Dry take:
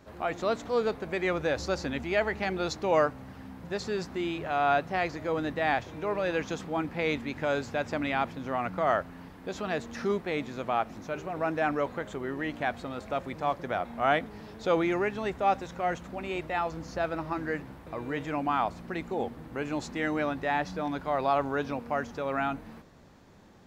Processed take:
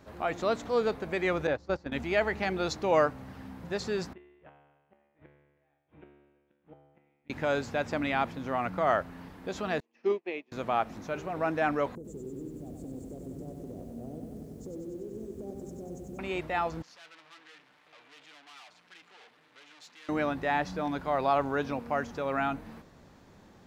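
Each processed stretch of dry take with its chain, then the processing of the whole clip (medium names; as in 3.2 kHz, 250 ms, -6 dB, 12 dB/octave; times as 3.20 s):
1.47–1.92 s: low-pass 2 kHz 6 dB/octave + gate -32 dBFS, range -17 dB
4.13–7.30 s: steep low-pass 3.3 kHz 48 dB/octave + inverted gate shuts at -25 dBFS, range -37 dB + feedback comb 72 Hz, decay 1.3 s, mix 90%
9.80–10.52 s: cabinet simulation 330–5400 Hz, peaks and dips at 350 Hz +10 dB, 1.4 kHz -10 dB, 2.6 kHz +9 dB, 3.8 kHz -7 dB + upward expansion 2.5:1, over -45 dBFS
11.95–16.19 s: Chebyshev band-stop 410–7300 Hz, order 3 + compression 16:1, threshold -38 dBFS + bit-crushed delay 95 ms, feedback 80%, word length 11-bit, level -5 dB
16.82–20.09 s: comb 6.7 ms, depth 43% + valve stage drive 43 dB, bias 0.55 + band-pass filter 3.2 kHz, Q 0.92
whole clip: none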